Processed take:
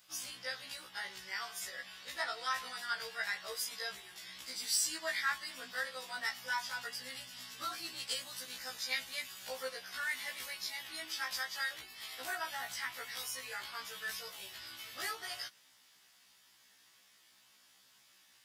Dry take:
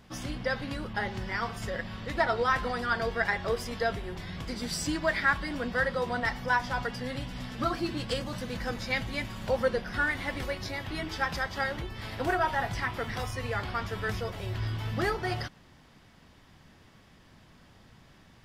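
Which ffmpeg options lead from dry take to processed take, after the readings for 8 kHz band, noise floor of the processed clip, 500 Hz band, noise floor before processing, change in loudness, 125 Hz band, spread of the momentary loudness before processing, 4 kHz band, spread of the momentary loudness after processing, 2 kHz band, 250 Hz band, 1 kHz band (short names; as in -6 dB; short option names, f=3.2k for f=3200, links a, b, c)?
+4.5 dB, -66 dBFS, -17.0 dB, -57 dBFS, -7.5 dB, -31.5 dB, 9 LU, -0.5 dB, 9 LU, -7.5 dB, -24.5 dB, -11.5 dB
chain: -af "aderivative,acontrast=53,afftfilt=real='re*1.73*eq(mod(b,3),0)':imag='im*1.73*eq(mod(b,3),0)':win_size=2048:overlap=0.75,volume=1dB"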